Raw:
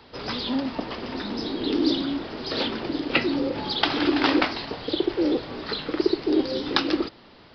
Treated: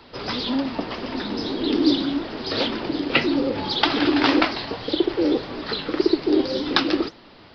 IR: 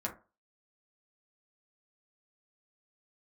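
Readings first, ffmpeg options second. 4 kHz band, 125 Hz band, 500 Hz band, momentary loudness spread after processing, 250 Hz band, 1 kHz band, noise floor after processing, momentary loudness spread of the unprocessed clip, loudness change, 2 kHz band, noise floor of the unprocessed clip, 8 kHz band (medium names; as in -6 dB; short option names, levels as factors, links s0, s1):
+3.0 dB, +2.5 dB, +3.0 dB, 9 LU, +3.0 dB, +3.0 dB, -48 dBFS, 9 LU, +3.0 dB, +3.0 dB, -51 dBFS, no reading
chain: -af "flanger=delay=2.9:depth=7.8:regen=61:speed=1.8:shape=sinusoidal,volume=2.24"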